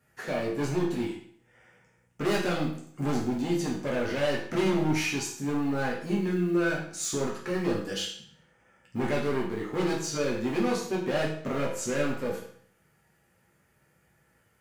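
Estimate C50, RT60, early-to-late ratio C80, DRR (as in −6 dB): 5.0 dB, 0.60 s, 8.5 dB, −4.5 dB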